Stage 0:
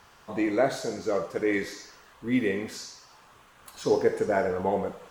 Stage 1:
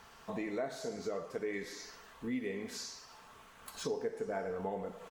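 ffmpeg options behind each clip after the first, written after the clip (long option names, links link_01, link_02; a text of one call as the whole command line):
ffmpeg -i in.wav -af "aecho=1:1:4.5:0.33,acompressor=threshold=-36dB:ratio=3,volume=-2dB" out.wav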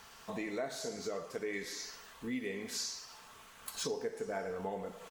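ffmpeg -i in.wav -af "highshelf=frequency=2400:gain=8.5,volume=-1.5dB" out.wav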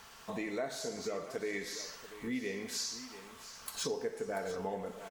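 ffmpeg -i in.wav -af "aecho=1:1:687:0.2,volume=1dB" out.wav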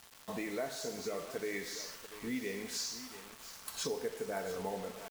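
ffmpeg -i in.wav -af "acrusher=bits=7:mix=0:aa=0.000001,volume=-1dB" out.wav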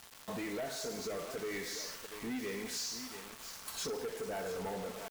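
ffmpeg -i in.wav -af "asoftclip=type=tanh:threshold=-38dB,volume=3.5dB" out.wav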